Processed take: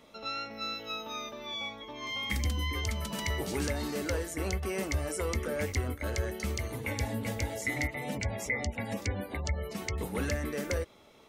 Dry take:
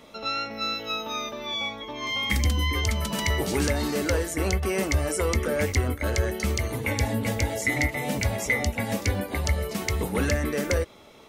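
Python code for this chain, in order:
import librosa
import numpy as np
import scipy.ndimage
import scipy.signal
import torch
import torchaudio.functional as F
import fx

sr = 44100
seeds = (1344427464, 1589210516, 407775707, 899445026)

y = fx.spec_gate(x, sr, threshold_db=-30, keep='strong', at=(7.87, 9.98))
y = y * 10.0 ** (-7.5 / 20.0)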